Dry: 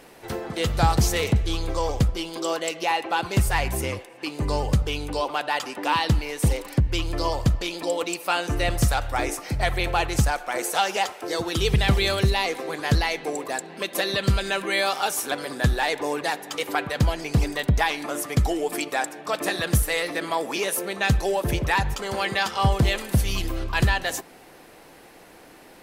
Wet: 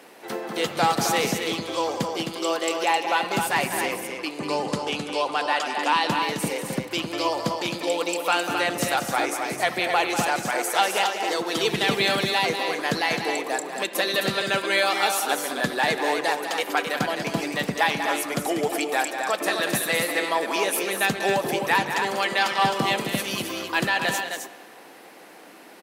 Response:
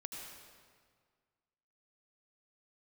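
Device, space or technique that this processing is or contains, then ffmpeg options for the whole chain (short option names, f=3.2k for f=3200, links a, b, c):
filtered reverb send: -filter_complex "[0:a]asettb=1/sr,asplit=3[a][b][c];[a]atrim=end=4.384[d];[b]atrim=start=4.38:end=6.1,asetpts=PTS-STARTPTS,afade=t=in:d=0.004:c=qsin,afade=t=out:st=1.716:d=0.004:c=qsin,lowpass=f=11k:w=0.5412,lowpass=f=11k:w=1.3066[e];[c]atrim=start=6.096[f];[d][e]acrossfade=d=0.004:c1=hsin:c2=qsin[g];[g][f]acrossfade=d=0.004:c1=qsin:c2=hsin,asplit=2[h][i];[i]highpass=470,lowpass=4.6k[j];[1:a]atrim=start_sample=2205[k];[j][k]afir=irnorm=-1:irlink=0,volume=-9dB[l];[h][l]amix=inputs=2:normalize=0,highpass=f=190:w=0.5412,highpass=f=190:w=1.3066,aecho=1:1:192.4|262.4:0.355|0.501"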